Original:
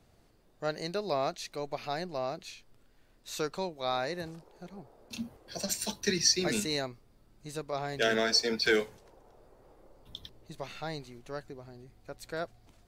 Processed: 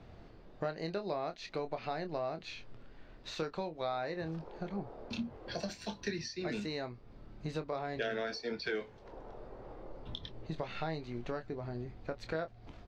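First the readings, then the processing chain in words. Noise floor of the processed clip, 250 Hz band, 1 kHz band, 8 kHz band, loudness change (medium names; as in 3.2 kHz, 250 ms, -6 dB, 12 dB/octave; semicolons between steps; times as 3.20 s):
-55 dBFS, -3.0 dB, -4.0 dB, -19.5 dB, -7.5 dB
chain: compression 5:1, threshold -45 dBFS, peak gain reduction 21.5 dB; distance through air 220 m; doubling 25 ms -9 dB; trim +10 dB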